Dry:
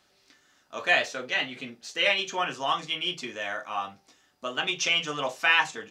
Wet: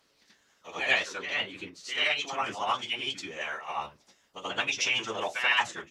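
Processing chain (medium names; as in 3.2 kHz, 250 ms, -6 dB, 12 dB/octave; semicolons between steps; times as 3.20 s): reverse echo 82 ms -6 dB; formant-preserving pitch shift -5 st; harmonic-percussive split harmonic -11 dB; trim +1 dB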